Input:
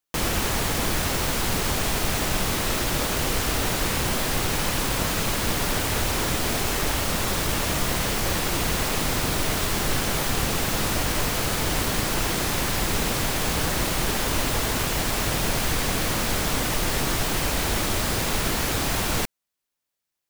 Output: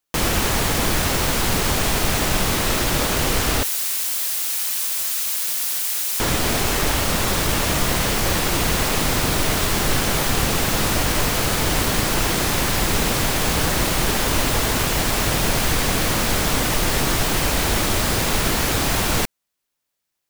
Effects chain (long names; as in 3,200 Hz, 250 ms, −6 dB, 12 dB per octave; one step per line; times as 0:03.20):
0:03.63–0:06.20: first difference
level +4.5 dB